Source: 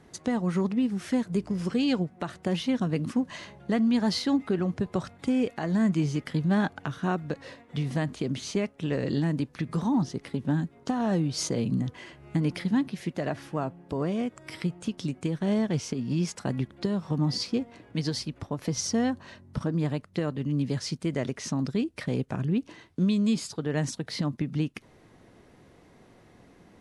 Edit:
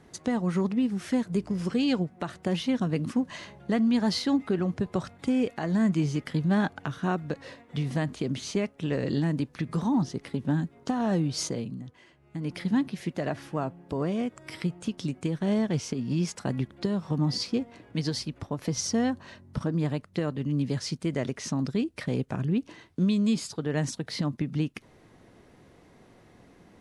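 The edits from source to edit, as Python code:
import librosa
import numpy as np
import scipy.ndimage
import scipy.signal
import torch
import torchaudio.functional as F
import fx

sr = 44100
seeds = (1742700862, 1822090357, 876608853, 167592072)

y = fx.edit(x, sr, fx.fade_down_up(start_s=11.38, length_s=1.32, db=-11.5, fade_s=0.37), tone=tone)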